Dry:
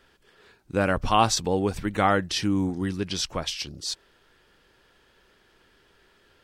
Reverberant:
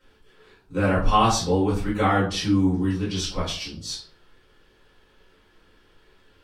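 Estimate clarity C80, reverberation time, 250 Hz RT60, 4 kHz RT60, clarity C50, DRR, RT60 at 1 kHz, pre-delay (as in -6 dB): 12.0 dB, 0.45 s, 0.50 s, 0.30 s, 6.5 dB, -9.5 dB, 0.40 s, 4 ms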